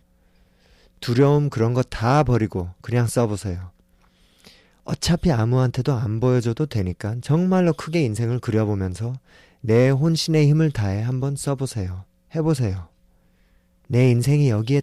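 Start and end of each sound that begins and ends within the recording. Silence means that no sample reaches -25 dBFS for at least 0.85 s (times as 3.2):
1.03–3.57
4.88–12.78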